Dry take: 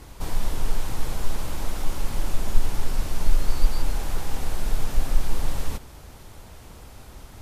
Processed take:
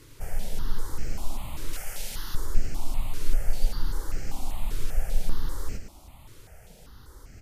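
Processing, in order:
0:01.73–0:02.35: tilt shelving filter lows −7.5 dB, about 840 Hz
single-tap delay 109 ms −8 dB
step-sequenced phaser 5.1 Hz 200–3,600 Hz
level −3.5 dB

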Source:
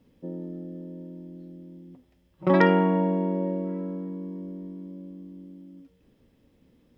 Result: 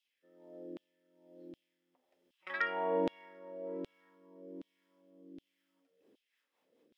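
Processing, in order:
auto-filter high-pass saw down 1.3 Hz 320–3,300 Hz
rotating-speaker cabinet horn 1.2 Hz, later 5 Hz, at 0:05.62
level −6.5 dB

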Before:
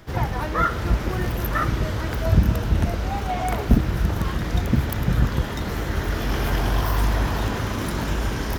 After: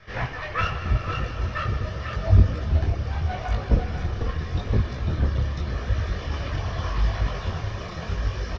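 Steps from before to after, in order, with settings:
lower of the sound and its delayed copy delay 1.7 ms
elliptic low-pass filter 5,700 Hz, stop band 60 dB
single-tap delay 497 ms −6 dB
reverb reduction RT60 1.7 s
parametric band 2,000 Hz +8 dB 1.1 octaves, from 0:00.61 83 Hz
four-comb reverb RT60 3.6 s, combs from 29 ms, DRR 5.5 dB
micro pitch shift up and down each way 29 cents

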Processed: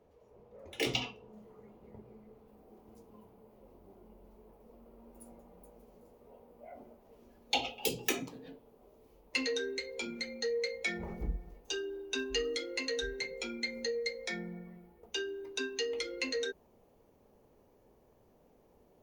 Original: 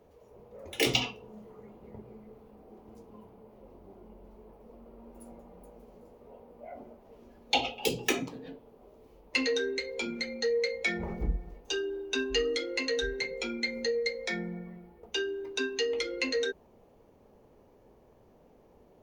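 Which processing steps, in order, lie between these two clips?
high-shelf EQ 7,100 Hz −6 dB, from 0:01.33 +2 dB, from 0:02.48 +9 dB
level −5.5 dB

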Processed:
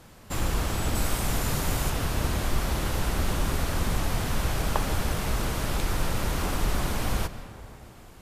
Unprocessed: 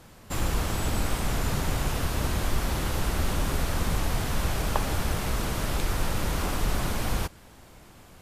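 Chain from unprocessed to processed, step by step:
0:00.95–0:01.90: high-shelf EQ 6,400 Hz +6.5 dB
comb and all-pass reverb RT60 3 s, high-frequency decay 0.4×, pre-delay 100 ms, DRR 12 dB

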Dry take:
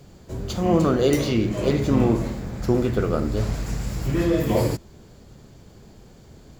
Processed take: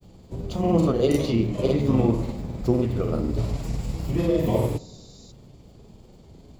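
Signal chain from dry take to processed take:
granular cloud, spray 35 ms, pitch spread up and down by 0 semitones
on a send at −19.5 dB: convolution reverb RT60 1.2 s, pre-delay 3 ms
on the sum: healed spectral selection 0:04.46–0:05.29, 3,600–7,500 Hz before
graphic EQ with 15 bands 1,600 Hz −11 dB, 6,300 Hz −5 dB, 16,000 Hz −5 dB

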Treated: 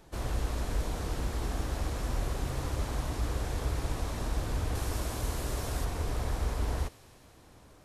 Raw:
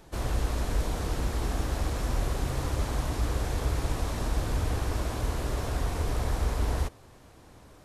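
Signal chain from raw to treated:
0:04.75–0:05.85: high-shelf EQ 5,400 Hz +8.5 dB
delay with a high-pass on its return 98 ms, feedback 83%, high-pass 2,500 Hz, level −17 dB
level −3.5 dB

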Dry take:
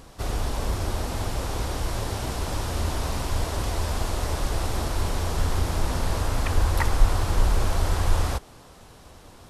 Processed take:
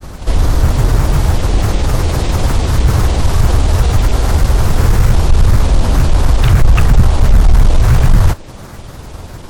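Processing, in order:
low-shelf EQ 210 Hz +8 dB
in parallel at 0 dB: downward compressor, threshold −25 dBFS, peak gain reduction 21 dB
on the sum: granular cloud, pitch spread up and down by 7 semitones
sine wavefolder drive 8 dB, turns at 1.5 dBFS
level −3 dB

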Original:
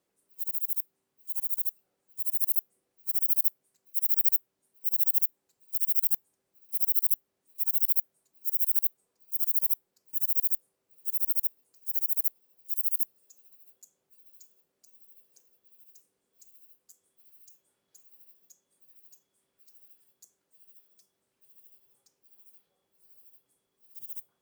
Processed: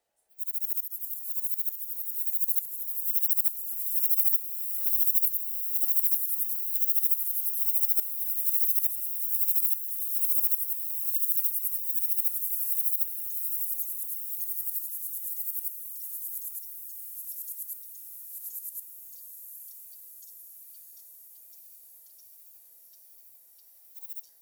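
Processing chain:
frequency inversion band by band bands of 1,000 Hz
parametric band 180 Hz −5.5 dB 1.9 octaves
feedback delay with all-pass diffusion 661 ms, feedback 73%, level −7.5 dB
delay with pitch and tempo change per echo 184 ms, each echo −3 semitones, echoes 2, each echo −6 dB

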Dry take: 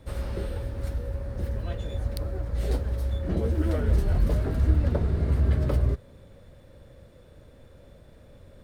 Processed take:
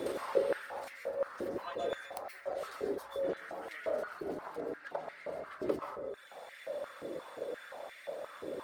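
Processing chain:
stylus tracing distortion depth 0.12 ms
speech leveller within 3 dB
reverb reduction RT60 0.91 s
downward compressor 20 to 1, threshold −42 dBFS, peak gain reduction 23.5 dB
0:04.26–0:04.85: amplitude modulation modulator 220 Hz, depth 90%
dense smooth reverb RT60 1 s, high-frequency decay 0.35×, pre-delay 115 ms, DRR 0 dB
high-pass on a step sequencer 5.7 Hz 370–2,000 Hz
level +11 dB

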